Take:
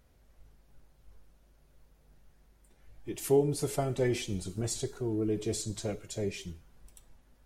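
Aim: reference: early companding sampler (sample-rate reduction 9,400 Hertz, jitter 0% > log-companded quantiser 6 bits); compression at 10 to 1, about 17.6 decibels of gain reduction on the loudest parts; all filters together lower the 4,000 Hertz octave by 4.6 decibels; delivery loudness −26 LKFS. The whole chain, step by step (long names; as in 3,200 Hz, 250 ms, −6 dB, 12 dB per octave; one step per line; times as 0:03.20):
parametric band 4,000 Hz −6 dB
downward compressor 10 to 1, threshold −38 dBFS
sample-rate reduction 9,400 Hz, jitter 0%
log-companded quantiser 6 bits
level +17.5 dB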